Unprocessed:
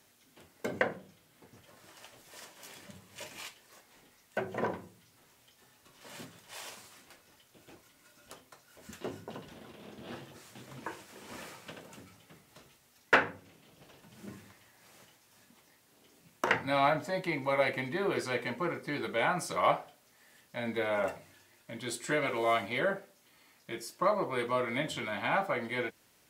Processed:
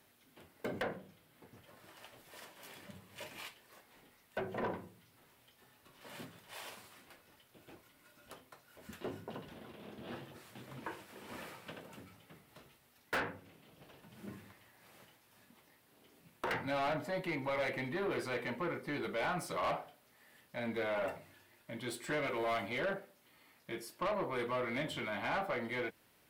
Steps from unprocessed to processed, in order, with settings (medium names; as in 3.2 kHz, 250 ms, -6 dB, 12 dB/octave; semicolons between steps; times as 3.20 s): saturation -30 dBFS, distortion -7 dB; peaking EQ 6.6 kHz -8.5 dB 0.98 oct; trim -1 dB